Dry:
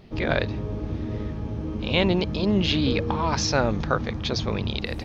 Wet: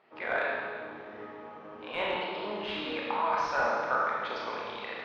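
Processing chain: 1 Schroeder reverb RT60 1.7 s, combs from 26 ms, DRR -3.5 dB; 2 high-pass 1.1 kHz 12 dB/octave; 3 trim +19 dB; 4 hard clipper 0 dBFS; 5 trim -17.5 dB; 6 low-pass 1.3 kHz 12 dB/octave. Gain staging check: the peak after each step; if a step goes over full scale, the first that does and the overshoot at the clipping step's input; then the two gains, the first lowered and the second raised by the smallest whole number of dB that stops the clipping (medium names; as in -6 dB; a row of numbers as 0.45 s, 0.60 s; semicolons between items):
-4.5 dBFS, -9.5 dBFS, +9.5 dBFS, 0.0 dBFS, -17.5 dBFS, -17.5 dBFS; step 3, 9.5 dB; step 3 +9 dB, step 5 -7.5 dB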